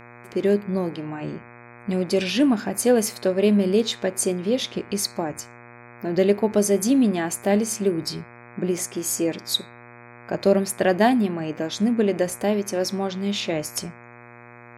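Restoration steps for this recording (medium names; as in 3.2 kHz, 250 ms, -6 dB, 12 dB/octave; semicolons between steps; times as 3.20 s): de-hum 119.8 Hz, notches 21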